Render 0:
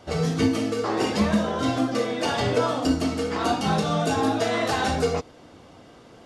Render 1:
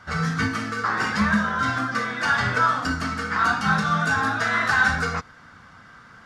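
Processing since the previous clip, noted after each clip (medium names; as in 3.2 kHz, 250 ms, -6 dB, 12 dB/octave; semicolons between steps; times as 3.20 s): FFT filter 210 Hz 0 dB, 320 Hz -13 dB, 660 Hz -9 dB, 1.5 kHz +15 dB, 2.8 kHz -3 dB, 5.1 kHz 0 dB, 9.6 kHz -5 dB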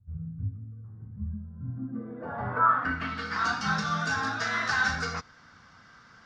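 low-pass sweep 100 Hz -> 5.6 kHz, 1.48–3.38 s; trim -7.5 dB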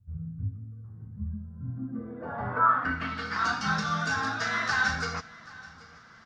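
feedback delay 780 ms, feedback 34%, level -21 dB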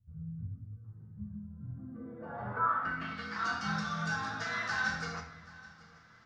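simulated room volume 270 m³, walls mixed, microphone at 0.74 m; trim -8.5 dB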